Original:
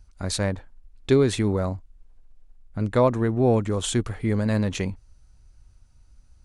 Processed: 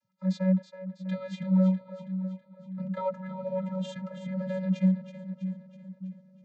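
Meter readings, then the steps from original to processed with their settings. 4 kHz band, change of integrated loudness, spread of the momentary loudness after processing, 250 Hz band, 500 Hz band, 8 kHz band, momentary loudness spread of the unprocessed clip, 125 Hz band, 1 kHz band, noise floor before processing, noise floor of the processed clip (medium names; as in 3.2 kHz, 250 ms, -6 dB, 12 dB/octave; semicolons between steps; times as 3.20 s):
-16.0 dB, -6.5 dB, 17 LU, -1.5 dB, -11.0 dB, under -20 dB, 11 LU, -5.5 dB, -10.0 dB, -56 dBFS, -60 dBFS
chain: on a send: two-band feedback delay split 360 Hz, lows 593 ms, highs 325 ms, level -10 dB; on the sum: vocoder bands 32, square 187 Hz; low-pass 5.9 kHz 12 dB/octave; trim -4.5 dB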